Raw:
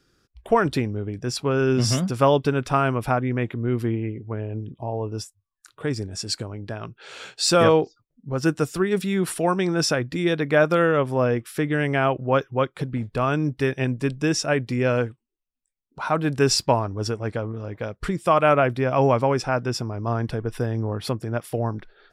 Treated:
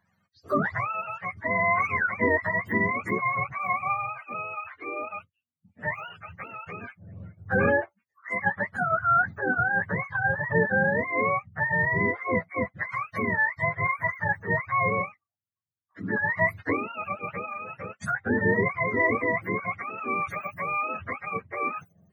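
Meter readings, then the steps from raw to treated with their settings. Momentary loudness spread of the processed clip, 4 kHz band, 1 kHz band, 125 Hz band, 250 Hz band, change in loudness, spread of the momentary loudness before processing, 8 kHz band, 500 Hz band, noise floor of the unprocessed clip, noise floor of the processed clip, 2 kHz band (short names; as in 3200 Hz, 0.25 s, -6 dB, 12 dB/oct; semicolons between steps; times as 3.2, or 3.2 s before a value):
13 LU, under -25 dB, -1.5 dB, -10.0 dB, -8.0 dB, -3.5 dB, 12 LU, under -25 dB, -8.0 dB, -78 dBFS, -83 dBFS, +5.0 dB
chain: spectrum mirrored in octaves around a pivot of 520 Hz; band shelf 1500 Hz +11 dB 1.1 oct; gain -6.5 dB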